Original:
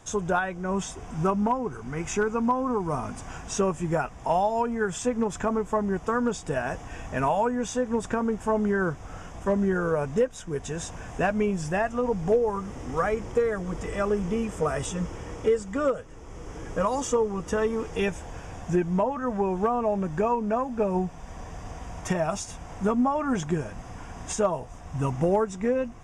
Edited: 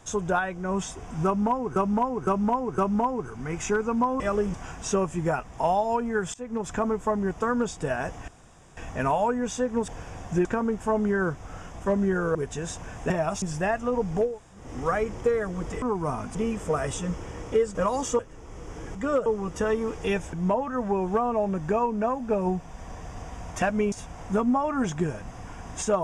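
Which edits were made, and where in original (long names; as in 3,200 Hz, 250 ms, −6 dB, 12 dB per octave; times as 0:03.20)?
0:01.25–0:01.76: repeat, 4 plays
0:02.67–0:03.20: swap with 0:13.93–0:14.27
0:05.00–0:05.38: fade in, from −23 dB
0:06.94: splice in room tone 0.49 s
0:09.95–0:10.48: remove
0:11.23–0:11.53: swap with 0:22.11–0:22.43
0:12.39–0:12.74: fill with room tone, crossfade 0.24 s
0:15.67–0:15.98: swap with 0:16.74–0:17.18
0:18.25–0:18.82: move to 0:08.05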